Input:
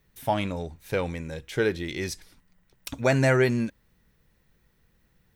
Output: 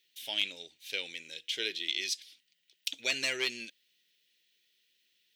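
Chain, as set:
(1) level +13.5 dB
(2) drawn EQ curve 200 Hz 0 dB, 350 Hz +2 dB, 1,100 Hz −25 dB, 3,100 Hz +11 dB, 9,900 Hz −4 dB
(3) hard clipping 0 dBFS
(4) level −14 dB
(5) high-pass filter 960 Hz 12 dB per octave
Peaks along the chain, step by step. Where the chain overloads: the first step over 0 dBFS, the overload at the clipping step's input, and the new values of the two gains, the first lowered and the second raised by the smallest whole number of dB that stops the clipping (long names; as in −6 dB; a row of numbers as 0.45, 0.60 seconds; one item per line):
+4.5, +4.5, 0.0, −14.0, −14.5 dBFS
step 1, 4.5 dB
step 1 +8.5 dB, step 4 −9 dB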